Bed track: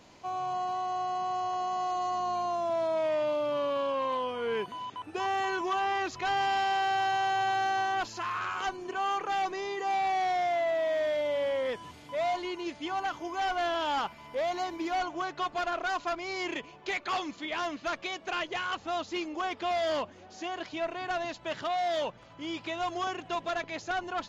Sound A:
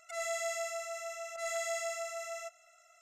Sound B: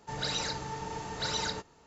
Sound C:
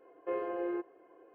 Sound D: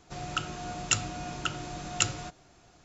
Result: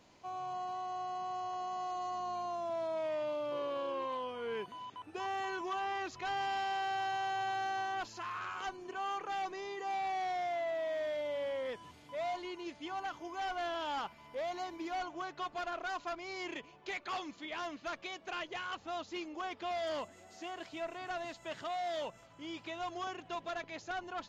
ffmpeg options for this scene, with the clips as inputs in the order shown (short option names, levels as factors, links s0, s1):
-filter_complex "[0:a]volume=0.422[s0];[1:a]acompressor=threshold=0.00355:ratio=6:attack=3.2:release=140:knee=1:detection=peak[s1];[3:a]atrim=end=1.34,asetpts=PTS-STARTPTS,volume=0.158,afade=t=in:d=0.004:c=hsin,afade=t=out:st=1.336:d=0.004:c=hsin,adelay=3240[s2];[s1]atrim=end=3.01,asetpts=PTS-STARTPTS,volume=0.316,afade=t=in:d=0.004:c=hsin,afade=t=out:st=3.006:d=0.004:c=hsin,adelay=19780[s3];[s0][s2][s3]amix=inputs=3:normalize=0"